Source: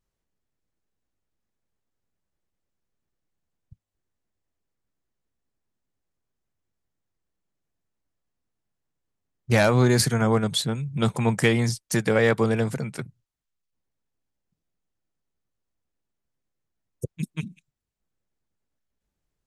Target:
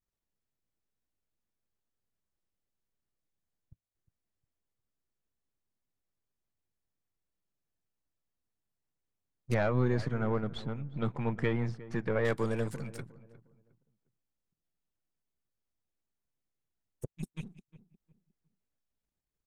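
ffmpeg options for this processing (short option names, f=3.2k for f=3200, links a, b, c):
-filter_complex "[0:a]aeval=exprs='if(lt(val(0),0),0.447*val(0),val(0))':c=same,asettb=1/sr,asplit=3[a][b][c];[a]atrim=end=9.544[d];[b]atrim=start=9.54:end=12.25,asetpts=PTS-STARTPTS,afade=t=in:d=0.004:c=qsin,afade=t=out:st=2.706:d=0.004:c=qsin,lowpass=2.1k[e];[c]atrim=start=12.246[f];[d][e]acrossfade=d=0.004:c1=hsin:c2=qsin[g];[g][f]acrossfade=d=0.004:c1=qsin:c2=hsin,asplit=2[h][i];[i]adelay=357,lowpass=f=1.3k:p=1,volume=-16.5dB,asplit=2[j][k];[k]adelay=357,lowpass=f=1.3k:p=1,volume=0.3,asplit=2[l][m];[m]adelay=357,lowpass=f=1.3k:p=1,volume=0.3[n];[h][j][l][n]amix=inputs=4:normalize=0,volume=-7dB"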